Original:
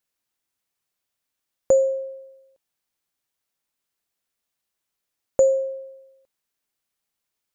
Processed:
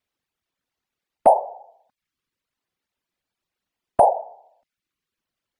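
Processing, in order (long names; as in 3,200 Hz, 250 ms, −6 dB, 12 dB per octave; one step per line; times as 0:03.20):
random phases in short frames
bass and treble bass +4 dB, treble −12 dB
in parallel at −2 dB: brickwall limiter −12 dBFS, peak gain reduction 6.5 dB
on the sum: change of speed 1.35×
reverb reduction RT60 0.65 s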